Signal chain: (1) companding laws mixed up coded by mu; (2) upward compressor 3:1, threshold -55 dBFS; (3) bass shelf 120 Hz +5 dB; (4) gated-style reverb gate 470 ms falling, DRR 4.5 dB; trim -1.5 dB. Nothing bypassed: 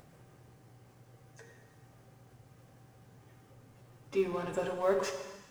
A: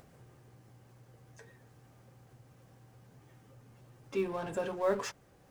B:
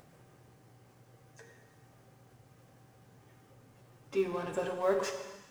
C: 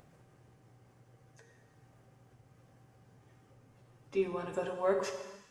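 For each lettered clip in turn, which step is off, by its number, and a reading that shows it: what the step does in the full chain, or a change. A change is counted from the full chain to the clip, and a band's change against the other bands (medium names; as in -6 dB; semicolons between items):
4, loudness change -1.5 LU; 3, 125 Hz band -2.0 dB; 1, distortion -18 dB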